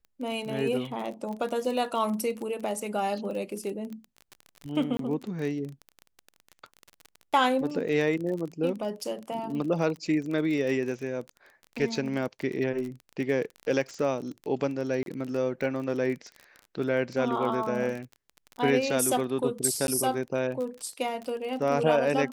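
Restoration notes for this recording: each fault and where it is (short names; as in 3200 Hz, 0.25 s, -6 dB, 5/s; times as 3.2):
crackle 28/s -33 dBFS
4.97–4.99 gap 23 ms
15.03–15.06 gap 32 ms
19.87–19.88 gap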